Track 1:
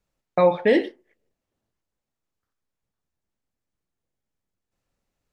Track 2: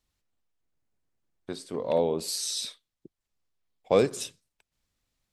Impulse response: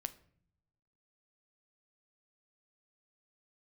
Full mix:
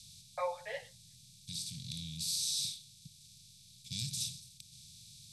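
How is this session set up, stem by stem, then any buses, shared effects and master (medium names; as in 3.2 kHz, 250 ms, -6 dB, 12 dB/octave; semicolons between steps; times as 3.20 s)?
-3.0 dB, 0.00 s, no send, steep high-pass 520 Hz 72 dB/octave; three-phase chorus; auto duck -10 dB, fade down 0.50 s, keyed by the second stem
-5.5 dB, 0.00 s, no send, spectral levelling over time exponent 0.4; elliptic band-stop 150–3300 Hz, stop band 50 dB; hum notches 50/100 Hz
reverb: none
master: peaking EQ 320 Hz -11.5 dB 0.64 oct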